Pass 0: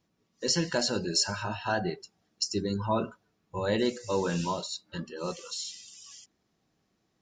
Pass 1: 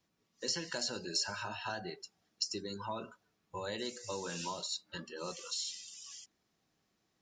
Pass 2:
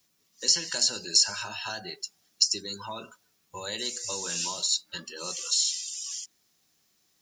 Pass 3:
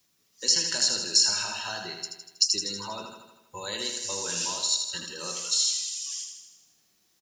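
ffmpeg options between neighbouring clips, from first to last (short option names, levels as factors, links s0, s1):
-filter_complex "[0:a]acrossover=split=250|4400[s0][s1][s2];[s0]acompressor=threshold=0.00562:ratio=4[s3];[s1]acompressor=threshold=0.0178:ratio=4[s4];[s2]acompressor=threshold=0.0141:ratio=4[s5];[s3][s4][s5]amix=inputs=3:normalize=0,tiltshelf=f=780:g=-3,volume=0.668"
-af "crystalizer=i=5.5:c=0"
-af "aecho=1:1:80|160|240|320|400|480|560|640:0.501|0.296|0.174|0.103|0.0607|0.0358|0.0211|0.0125"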